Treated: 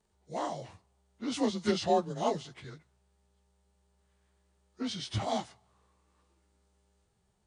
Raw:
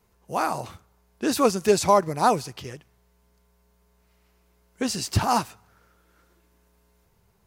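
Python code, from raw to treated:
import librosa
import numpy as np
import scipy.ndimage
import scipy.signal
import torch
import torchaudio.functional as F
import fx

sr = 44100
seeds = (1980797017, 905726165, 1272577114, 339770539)

y = fx.partial_stretch(x, sr, pct=91)
y = fx.formant_shift(y, sr, semitones=-2)
y = y * librosa.db_to_amplitude(-7.0)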